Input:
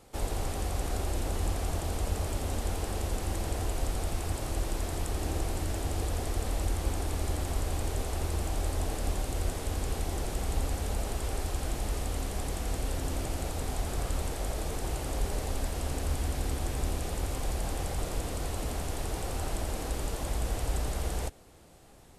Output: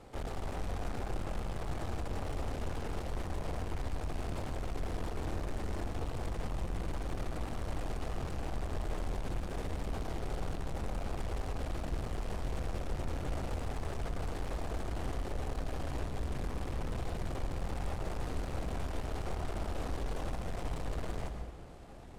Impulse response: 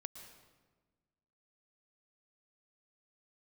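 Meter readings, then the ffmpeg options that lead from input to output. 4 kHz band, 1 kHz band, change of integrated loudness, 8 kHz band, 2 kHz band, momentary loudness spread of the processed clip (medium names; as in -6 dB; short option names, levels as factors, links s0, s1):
-8.5 dB, -4.0 dB, -6.0 dB, -15.0 dB, -4.5 dB, 1 LU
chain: -filter_complex "[0:a]aeval=exprs='(tanh(141*val(0)+0.6)-tanh(0.6))/141':c=same,aemphasis=mode=reproduction:type=75kf[s0];[1:a]atrim=start_sample=2205,asetrate=48510,aresample=44100[s1];[s0][s1]afir=irnorm=-1:irlink=0,volume=4.22"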